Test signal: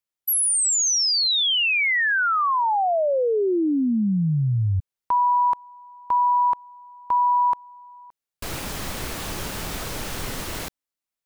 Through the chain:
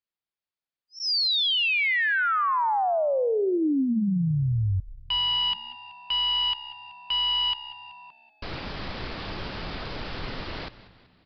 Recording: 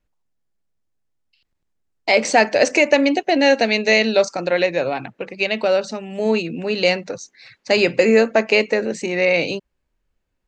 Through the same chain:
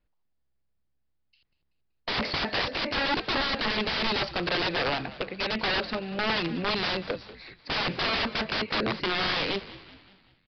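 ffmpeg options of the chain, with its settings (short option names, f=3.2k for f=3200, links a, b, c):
-filter_complex "[0:a]aeval=exprs='(mod(7.5*val(0)+1,2)-1)/7.5':c=same,aresample=11025,aresample=44100,asplit=6[a][b][c][d][e][f];[b]adelay=190,afreqshift=-67,volume=-16.5dB[g];[c]adelay=380,afreqshift=-134,volume=-22.3dB[h];[d]adelay=570,afreqshift=-201,volume=-28.2dB[i];[e]adelay=760,afreqshift=-268,volume=-34dB[j];[f]adelay=950,afreqshift=-335,volume=-39.9dB[k];[a][g][h][i][j][k]amix=inputs=6:normalize=0,volume=-3dB"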